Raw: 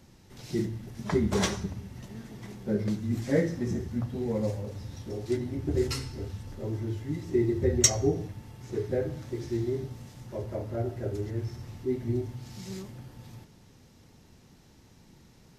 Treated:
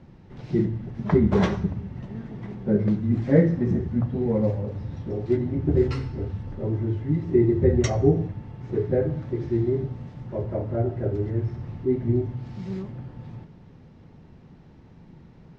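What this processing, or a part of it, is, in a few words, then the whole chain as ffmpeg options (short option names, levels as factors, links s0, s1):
phone in a pocket: -af "lowpass=3300,equalizer=f=160:t=o:w=0.32:g=6,highshelf=f=2100:g=-10.5,volume=2.11"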